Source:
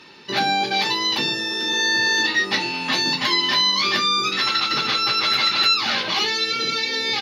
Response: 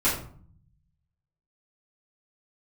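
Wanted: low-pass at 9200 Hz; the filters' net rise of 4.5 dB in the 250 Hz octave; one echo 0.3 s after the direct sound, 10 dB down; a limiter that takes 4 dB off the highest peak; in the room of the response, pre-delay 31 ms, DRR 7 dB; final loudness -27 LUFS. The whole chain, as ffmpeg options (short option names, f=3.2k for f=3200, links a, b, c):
-filter_complex "[0:a]lowpass=9.2k,equalizer=f=250:t=o:g=6,alimiter=limit=-12dB:level=0:latency=1,aecho=1:1:300:0.316,asplit=2[a][b];[1:a]atrim=start_sample=2205,adelay=31[c];[b][c]afir=irnorm=-1:irlink=0,volume=-20dB[d];[a][d]amix=inputs=2:normalize=0,volume=-8dB"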